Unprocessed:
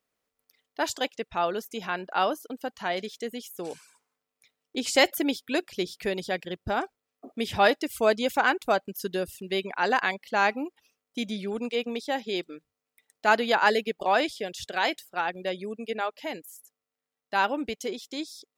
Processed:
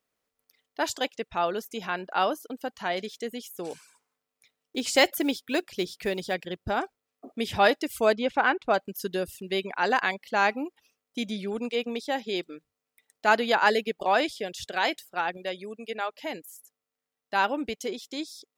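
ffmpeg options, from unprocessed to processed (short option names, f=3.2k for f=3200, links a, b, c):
-filter_complex "[0:a]asettb=1/sr,asplit=3[a][b][c];[a]atrim=end=3.714[d];[b]atrim=start=3.71:end=6.34,asetpts=PTS-STARTPTS,afade=t=in:d=0.004:c=qsin,afade=t=out:st=2.626:d=0.004:c=qsin,acrusher=bits=7:mode=log:mix=0:aa=0.000001[e];[c]atrim=start=6.336[f];[d][e]acrossfade=d=0.004:c1=hsin:c2=qsin[g];[g][f]acrossfade=d=0.004:c1=qsin:c2=hsin,asettb=1/sr,asplit=3[h][i][j];[h]atrim=end=8.134[k];[i]atrim=start=8.13:end=8.74,asetpts=PTS-STARTPTS,afade=t=in:d=0.004:c=qsin,afade=t=out:st=0.606:d=0.004:c=qsin,lowpass=3.1k[l];[j]atrim=start=8.736[m];[k][l]acrossfade=d=0.004:c1=hsin:c2=qsin[n];[n][m]acrossfade=d=0.004:c1=qsin:c2=hsin,asettb=1/sr,asplit=3[o][p][q];[o]atrim=end=15.374[r];[p]atrim=start=15.37:end=16.1,asetpts=PTS-STARTPTS,afade=t=in:d=0.004:c=qsin,afade=t=out:st=0.726:d=0.004:c=qsin,lowshelf=f=430:g=-6.5[s];[q]atrim=start=16.096[t];[r][s]acrossfade=d=0.004:c1=hsin:c2=qsin[u];[u][t]acrossfade=d=0.004:c1=qsin:c2=hsin"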